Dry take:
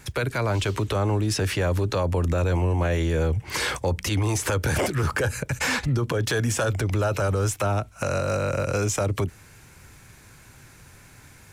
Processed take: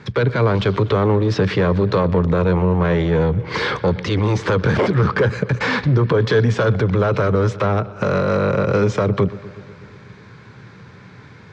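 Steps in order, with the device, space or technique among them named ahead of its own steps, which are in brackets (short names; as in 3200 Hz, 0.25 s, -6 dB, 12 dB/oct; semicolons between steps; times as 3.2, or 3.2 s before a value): analogue delay pedal into a guitar amplifier (analogue delay 0.122 s, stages 4096, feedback 70%, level -21 dB; tube stage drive 21 dB, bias 0.4; speaker cabinet 100–4200 Hz, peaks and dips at 120 Hz +6 dB, 190 Hz +10 dB, 440 Hz +8 dB, 710 Hz -3 dB, 1100 Hz +4 dB, 2700 Hz -6 dB); gain +8 dB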